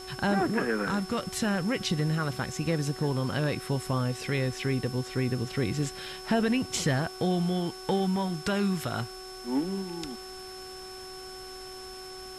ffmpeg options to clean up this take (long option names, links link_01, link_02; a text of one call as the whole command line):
ffmpeg -i in.wav -af "adeclick=threshold=4,bandreject=frequency=373.7:width_type=h:width=4,bandreject=frequency=747.4:width_type=h:width=4,bandreject=frequency=1121.1:width_type=h:width=4,bandreject=frequency=1494.8:width_type=h:width=4,bandreject=frequency=5300:width=30,afwtdn=0.0035" out.wav